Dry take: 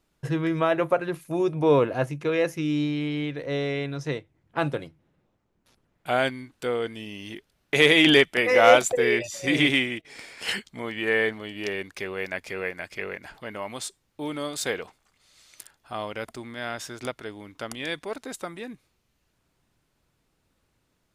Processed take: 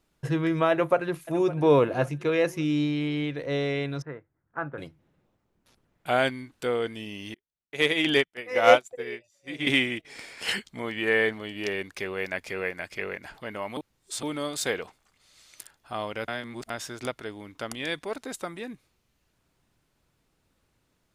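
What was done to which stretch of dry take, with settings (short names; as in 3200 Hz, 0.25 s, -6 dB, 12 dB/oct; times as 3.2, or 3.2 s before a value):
0.71–1.61 echo throw 0.56 s, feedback 35%, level -16 dB
4.02–4.78 ladder low-pass 1700 Hz, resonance 55%
7.34–9.67 upward expander 2.5:1, over -32 dBFS
13.77–14.23 reverse
16.28–16.7 reverse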